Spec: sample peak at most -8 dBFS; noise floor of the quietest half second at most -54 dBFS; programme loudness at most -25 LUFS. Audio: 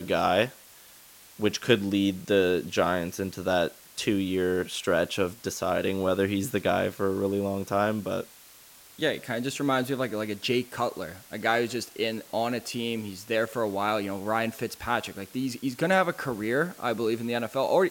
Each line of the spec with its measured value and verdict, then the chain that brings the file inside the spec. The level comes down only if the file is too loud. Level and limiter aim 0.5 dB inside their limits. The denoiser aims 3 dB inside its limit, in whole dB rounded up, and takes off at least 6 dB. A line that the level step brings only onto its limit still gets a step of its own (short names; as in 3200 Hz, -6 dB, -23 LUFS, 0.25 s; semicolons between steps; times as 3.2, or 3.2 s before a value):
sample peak -5.0 dBFS: fail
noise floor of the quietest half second -52 dBFS: fail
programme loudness -28.0 LUFS: OK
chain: denoiser 6 dB, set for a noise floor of -52 dBFS; limiter -8.5 dBFS